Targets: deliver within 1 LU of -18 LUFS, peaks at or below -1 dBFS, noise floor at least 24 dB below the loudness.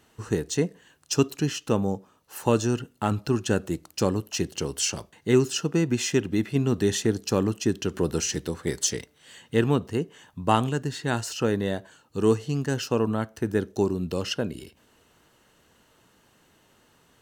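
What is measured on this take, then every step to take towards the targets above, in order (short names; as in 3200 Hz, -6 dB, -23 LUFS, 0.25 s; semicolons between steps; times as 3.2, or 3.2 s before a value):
loudness -26.5 LUFS; peak -5.5 dBFS; loudness target -18.0 LUFS
-> gain +8.5 dB; limiter -1 dBFS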